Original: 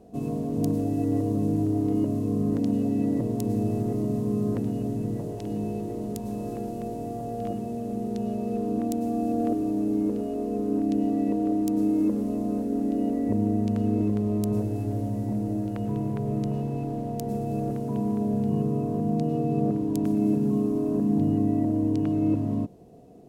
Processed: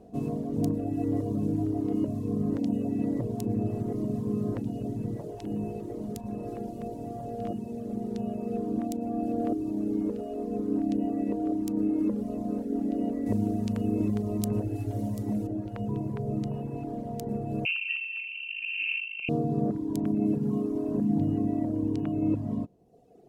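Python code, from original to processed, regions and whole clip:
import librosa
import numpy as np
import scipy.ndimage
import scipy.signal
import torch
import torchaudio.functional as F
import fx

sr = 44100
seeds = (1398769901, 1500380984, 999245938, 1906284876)

y = fx.chain(x, sr, fx.high_shelf(hz=3000.0, db=9.0),
    fx.echo_single(ms=740, db=-13.5), at=(13.26, 15.47))
y = fx.chain(y, sr, fx.peak_eq(hz=830.0, db=-14.5, octaves=0.67),
    fx.over_compress(threshold_db=-28.0, ratio=-0.5),
    fx.freq_invert(carrier_hz=2900), at=(17.65, 19.29))
y = fx.dereverb_blind(y, sr, rt60_s=1.3)
y = fx.high_shelf(y, sr, hz=5000.0, db=-5.0)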